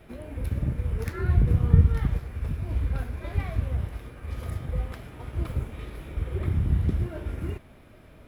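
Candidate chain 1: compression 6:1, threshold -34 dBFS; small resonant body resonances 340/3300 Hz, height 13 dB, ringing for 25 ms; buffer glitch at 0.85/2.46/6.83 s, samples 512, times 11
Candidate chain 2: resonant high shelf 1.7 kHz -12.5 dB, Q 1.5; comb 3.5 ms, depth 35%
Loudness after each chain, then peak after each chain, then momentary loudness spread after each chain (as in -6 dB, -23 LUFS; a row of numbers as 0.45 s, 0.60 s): -37.5 LUFS, -28.5 LUFS; -19.0 dBFS, -4.0 dBFS; 5 LU, 14 LU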